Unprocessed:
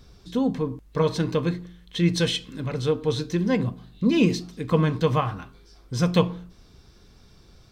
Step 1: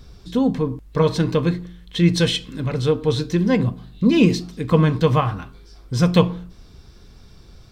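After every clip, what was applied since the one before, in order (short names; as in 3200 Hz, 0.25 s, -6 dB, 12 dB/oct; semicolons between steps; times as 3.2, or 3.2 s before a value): low shelf 110 Hz +5 dB; notch 6200 Hz, Q 29; gain +4 dB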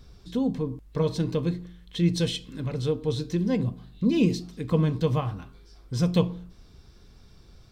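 dynamic EQ 1500 Hz, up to -8 dB, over -37 dBFS, Q 0.77; gain -6.5 dB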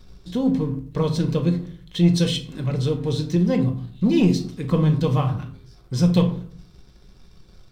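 sample leveller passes 1; shoebox room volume 390 m³, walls furnished, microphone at 1 m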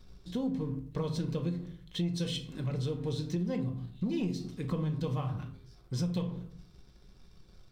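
compressor 5:1, threshold -22 dBFS, peak gain reduction 10.5 dB; gain -7.5 dB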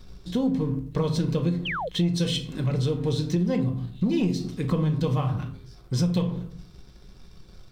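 painted sound fall, 1.65–1.89, 450–3400 Hz -38 dBFS; gain +8.5 dB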